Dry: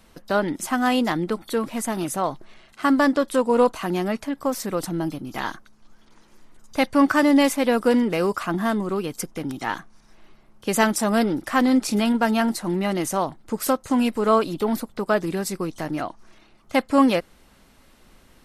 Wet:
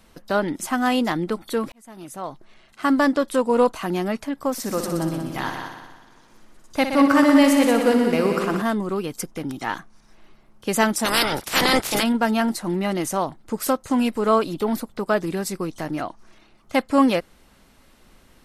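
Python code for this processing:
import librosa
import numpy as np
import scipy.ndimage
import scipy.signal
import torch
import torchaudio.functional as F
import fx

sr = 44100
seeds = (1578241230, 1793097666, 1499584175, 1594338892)

y = fx.echo_heads(x, sr, ms=61, heads='all three', feedback_pct=50, wet_db=-9.5, at=(4.52, 8.62))
y = fx.spec_clip(y, sr, under_db=30, at=(11.04, 12.02), fade=0.02)
y = fx.edit(y, sr, fx.fade_in_span(start_s=1.72, length_s=1.23), tone=tone)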